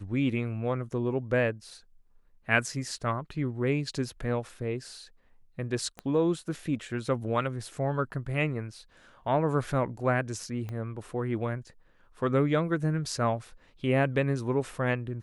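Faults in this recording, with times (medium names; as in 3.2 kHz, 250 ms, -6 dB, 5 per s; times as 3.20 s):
5.99 s: pop -23 dBFS
10.69 s: pop -25 dBFS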